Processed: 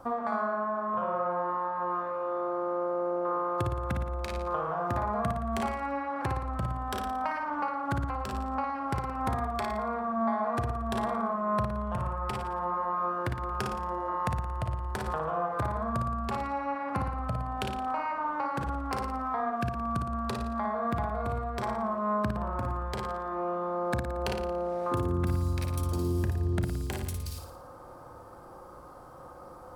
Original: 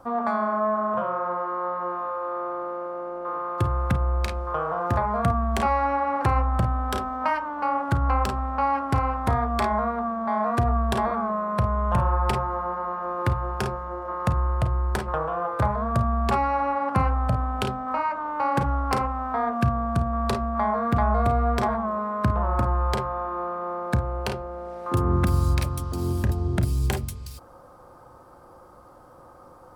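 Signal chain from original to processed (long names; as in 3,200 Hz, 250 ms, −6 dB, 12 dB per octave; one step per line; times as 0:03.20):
downward compressor, threshold −29 dBFS, peak gain reduction 12 dB
on a send: flutter between parallel walls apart 9.8 metres, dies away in 0.62 s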